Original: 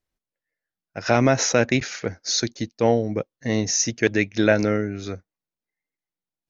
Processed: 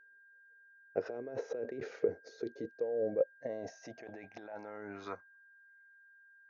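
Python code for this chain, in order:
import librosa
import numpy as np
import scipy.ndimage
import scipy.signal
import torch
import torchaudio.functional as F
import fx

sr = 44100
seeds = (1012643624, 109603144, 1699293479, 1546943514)

y = fx.over_compress(x, sr, threshold_db=-29.0, ratio=-1.0)
y = fx.filter_sweep_bandpass(y, sr, from_hz=440.0, to_hz=1300.0, start_s=2.57, end_s=5.87, q=6.3)
y = y + 10.0 ** (-63.0 / 20.0) * np.sin(2.0 * np.pi * 1600.0 * np.arange(len(y)) / sr)
y = F.gain(torch.from_numpy(y), 4.0).numpy()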